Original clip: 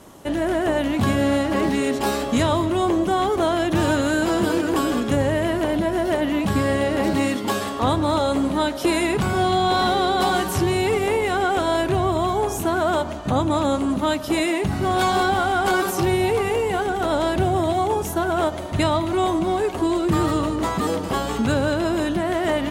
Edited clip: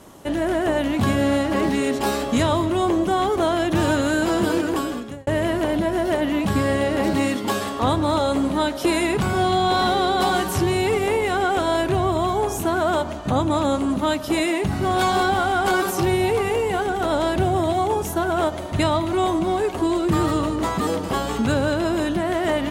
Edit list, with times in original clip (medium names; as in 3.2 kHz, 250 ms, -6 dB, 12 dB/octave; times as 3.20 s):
4.61–5.27 s: fade out linear